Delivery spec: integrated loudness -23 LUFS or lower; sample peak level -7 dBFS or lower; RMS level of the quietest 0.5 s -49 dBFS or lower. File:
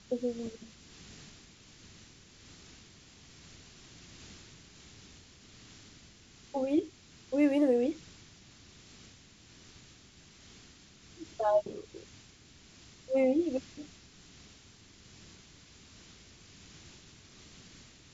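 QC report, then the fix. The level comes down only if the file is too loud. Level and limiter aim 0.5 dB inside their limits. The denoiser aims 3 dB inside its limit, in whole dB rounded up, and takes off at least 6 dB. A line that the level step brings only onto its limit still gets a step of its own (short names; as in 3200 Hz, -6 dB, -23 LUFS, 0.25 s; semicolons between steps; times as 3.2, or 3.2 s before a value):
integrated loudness -31.0 LUFS: OK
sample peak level -16.5 dBFS: OK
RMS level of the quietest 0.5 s -57 dBFS: OK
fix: none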